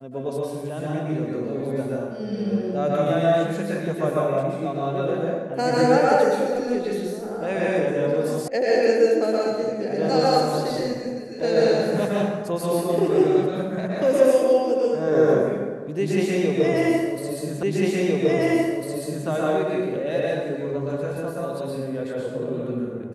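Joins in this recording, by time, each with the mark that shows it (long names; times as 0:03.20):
0:08.48: cut off before it has died away
0:17.63: the same again, the last 1.65 s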